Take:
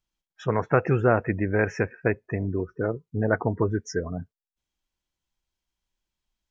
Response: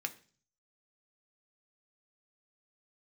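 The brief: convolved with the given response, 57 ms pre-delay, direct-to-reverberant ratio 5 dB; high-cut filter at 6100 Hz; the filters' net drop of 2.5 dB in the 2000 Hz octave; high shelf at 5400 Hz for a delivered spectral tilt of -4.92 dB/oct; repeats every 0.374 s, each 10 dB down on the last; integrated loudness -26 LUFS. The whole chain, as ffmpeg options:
-filter_complex "[0:a]lowpass=6.1k,equalizer=f=2k:t=o:g=-3,highshelf=f=5.4k:g=-5.5,aecho=1:1:374|748|1122|1496:0.316|0.101|0.0324|0.0104,asplit=2[a][b];[1:a]atrim=start_sample=2205,adelay=57[c];[b][c]afir=irnorm=-1:irlink=0,volume=-6.5dB[d];[a][d]amix=inputs=2:normalize=0,volume=-0.5dB"

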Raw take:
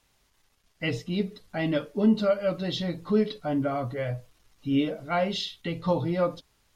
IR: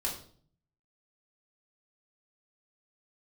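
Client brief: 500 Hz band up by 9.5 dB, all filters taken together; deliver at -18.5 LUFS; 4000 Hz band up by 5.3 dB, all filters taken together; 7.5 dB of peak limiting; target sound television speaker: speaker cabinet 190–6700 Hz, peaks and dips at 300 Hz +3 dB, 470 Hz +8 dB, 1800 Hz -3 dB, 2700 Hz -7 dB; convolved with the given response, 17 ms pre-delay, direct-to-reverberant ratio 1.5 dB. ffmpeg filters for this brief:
-filter_complex "[0:a]equalizer=f=500:t=o:g=6.5,equalizer=f=4k:t=o:g=8,alimiter=limit=-16.5dB:level=0:latency=1,asplit=2[a][b];[1:a]atrim=start_sample=2205,adelay=17[c];[b][c]afir=irnorm=-1:irlink=0,volume=-5.5dB[d];[a][d]amix=inputs=2:normalize=0,highpass=f=190:w=0.5412,highpass=f=190:w=1.3066,equalizer=f=300:t=q:w=4:g=3,equalizer=f=470:t=q:w=4:g=8,equalizer=f=1.8k:t=q:w=4:g=-3,equalizer=f=2.7k:t=q:w=4:g=-7,lowpass=f=6.7k:w=0.5412,lowpass=f=6.7k:w=1.3066,volume=3.5dB"

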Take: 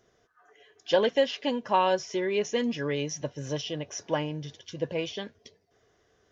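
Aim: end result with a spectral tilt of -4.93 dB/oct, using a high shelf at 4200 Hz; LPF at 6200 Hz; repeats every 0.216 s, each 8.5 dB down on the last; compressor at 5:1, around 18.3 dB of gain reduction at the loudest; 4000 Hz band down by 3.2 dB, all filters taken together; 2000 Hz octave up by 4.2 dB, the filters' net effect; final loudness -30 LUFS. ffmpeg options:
-af "lowpass=6.2k,equalizer=f=2k:t=o:g=8,equalizer=f=4k:t=o:g=-5.5,highshelf=f=4.2k:g=-7,acompressor=threshold=-39dB:ratio=5,aecho=1:1:216|432|648|864:0.376|0.143|0.0543|0.0206,volume=12dB"

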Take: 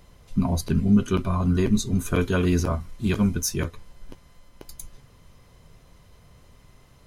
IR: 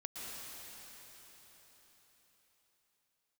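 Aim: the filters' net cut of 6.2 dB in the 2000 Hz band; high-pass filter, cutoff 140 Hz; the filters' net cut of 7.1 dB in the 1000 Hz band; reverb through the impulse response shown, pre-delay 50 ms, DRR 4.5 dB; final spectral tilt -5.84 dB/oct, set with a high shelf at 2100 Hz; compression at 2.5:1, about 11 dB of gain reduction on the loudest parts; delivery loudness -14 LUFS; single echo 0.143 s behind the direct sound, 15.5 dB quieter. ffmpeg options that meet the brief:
-filter_complex "[0:a]highpass=140,equalizer=f=1k:t=o:g=-7,equalizer=f=2k:t=o:g=-3.5,highshelf=f=2.1k:g=-4,acompressor=threshold=-32dB:ratio=2.5,aecho=1:1:143:0.168,asplit=2[a][b];[1:a]atrim=start_sample=2205,adelay=50[c];[b][c]afir=irnorm=-1:irlink=0,volume=-4.5dB[d];[a][d]amix=inputs=2:normalize=0,volume=18.5dB"

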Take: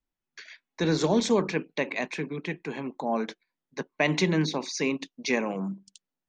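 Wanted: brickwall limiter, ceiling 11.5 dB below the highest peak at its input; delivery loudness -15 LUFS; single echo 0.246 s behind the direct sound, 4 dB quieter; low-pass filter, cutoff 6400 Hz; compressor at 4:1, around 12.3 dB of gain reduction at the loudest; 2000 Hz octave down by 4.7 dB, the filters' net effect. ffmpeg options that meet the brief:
-af "lowpass=6.4k,equalizer=f=2k:t=o:g=-5.5,acompressor=threshold=-34dB:ratio=4,alimiter=level_in=5.5dB:limit=-24dB:level=0:latency=1,volume=-5.5dB,aecho=1:1:246:0.631,volume=24.5dB"

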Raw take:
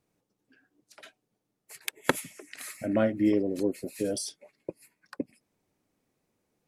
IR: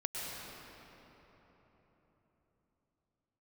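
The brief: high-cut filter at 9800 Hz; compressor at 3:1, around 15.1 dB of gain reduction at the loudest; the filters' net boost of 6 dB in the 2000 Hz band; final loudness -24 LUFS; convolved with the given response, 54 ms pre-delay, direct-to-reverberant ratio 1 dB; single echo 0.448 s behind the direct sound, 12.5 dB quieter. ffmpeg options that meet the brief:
-filter_complex "[0:a]lowpass=9.8k,equalizer=f=2k:t=o:g=7.5,acompressor=threshold=-38dB:ratio=3,aecho=1:1:448:0.237,asplit=2[a][b];[1:a]atrim=start_sample=2205,adelay=54[c];[b][c]afir=irnorm=-1:irlink=0,volume=-4.5dB[d];[a][d]amix=inputs=2:normalize=0,volume=15dB"

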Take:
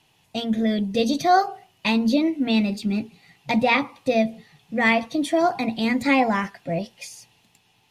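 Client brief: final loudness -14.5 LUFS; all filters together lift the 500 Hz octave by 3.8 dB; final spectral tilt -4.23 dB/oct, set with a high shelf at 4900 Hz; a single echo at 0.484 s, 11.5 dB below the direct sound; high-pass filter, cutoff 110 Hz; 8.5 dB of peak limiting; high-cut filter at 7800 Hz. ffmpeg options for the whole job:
-af "highpass=110,lowpass=7.8k,equalizer=f=500:t=o:g=5,highshelf=f=4.9k:g=-4.5,alimiter=limit=-13.5dB:level=0:latency=1,aecho=1:1:484:0.266,volume=9dB"

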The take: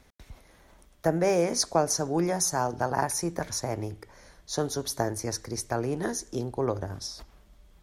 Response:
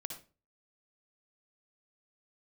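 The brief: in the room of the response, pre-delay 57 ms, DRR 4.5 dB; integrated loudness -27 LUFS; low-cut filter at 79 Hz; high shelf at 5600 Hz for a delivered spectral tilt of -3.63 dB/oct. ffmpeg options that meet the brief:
-filter_complex "[0:a]highpass=79,highshelf=f=5.6k:g=3.5,asplit=2[a][b];[1:a]atrim=start_sample=2205,adelay=57[c];[b][c]afir=irnorm=-1:irlink=0,volume=-2.5dB[d];[a][d]amix=inputs=2:normalize=0"

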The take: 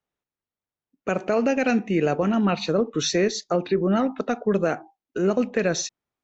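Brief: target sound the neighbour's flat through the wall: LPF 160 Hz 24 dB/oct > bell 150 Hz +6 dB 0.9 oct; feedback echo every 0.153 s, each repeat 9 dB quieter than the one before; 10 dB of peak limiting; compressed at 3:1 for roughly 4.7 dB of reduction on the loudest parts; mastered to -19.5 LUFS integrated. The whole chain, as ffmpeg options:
-af "acompressor=threshold=-23dB:ratio=3,alimiter=limit=-22dB:level=0:latency=1,lowpass=f=160:w=0.5412,lowpass=f=160:w=1.3066,equalizer=f=150:t=o:w=0.9:g=6,aecho=1:1:153|306|459|612:0.355|0.124|0.0435|0.0152,volume=21dB"

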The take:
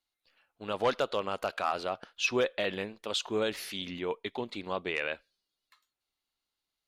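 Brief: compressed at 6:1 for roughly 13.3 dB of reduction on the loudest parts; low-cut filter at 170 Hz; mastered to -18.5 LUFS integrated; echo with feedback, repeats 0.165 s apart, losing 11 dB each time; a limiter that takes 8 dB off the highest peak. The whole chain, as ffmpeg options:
-af "highpass=170,acompressor=threshold=-38dB:ratio=6,alimiter=level_in=8dB:limit=-24dB:level=0:latency=1,volume=-8dB,aecho=1:1:165|330|495:0.282|0.0789|0.0221,volume=26dB"

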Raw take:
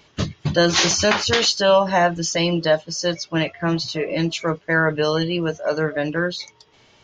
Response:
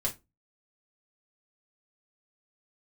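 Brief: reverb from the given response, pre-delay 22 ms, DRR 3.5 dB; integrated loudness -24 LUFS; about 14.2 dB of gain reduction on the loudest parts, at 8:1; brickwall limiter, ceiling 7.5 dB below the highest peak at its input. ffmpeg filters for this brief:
-filter_complex "[0:a]acompressor=threshold=-27dB:ratio=8,alimiter=limit=-23.5dB:level=0:latency=1,asplit=2[a][b];[1:a]atrim=start_sample=2205,adelay=22[c];[b][c]afir=irnorm=-1:irlink=0,volume=-8dB[d];[a][d]amix=inputs=2:normalize=0,volume=7.5dB"

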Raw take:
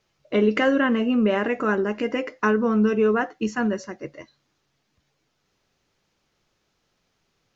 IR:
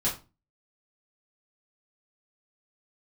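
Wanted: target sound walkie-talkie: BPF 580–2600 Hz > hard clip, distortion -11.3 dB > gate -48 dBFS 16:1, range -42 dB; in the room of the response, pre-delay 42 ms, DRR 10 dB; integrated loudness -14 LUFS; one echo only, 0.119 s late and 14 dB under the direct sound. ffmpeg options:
-filter_complex "[0:a]aecho=1:1:119:0.2,asplit=2[a][b];[1:a]atrim=start_sample=2205,adelay=42[c];[b][c]afir=irnorm=-1:irlink=0,volume=-18dB[d];[a][d]amix=inputs=2:normalize=0,highpass=580,lowpass=2.6k,asoftclip=type=hard:threshold=-22dB,agate=range=-42dB:threshold=-48dB:ratio=16,volume=15dB"

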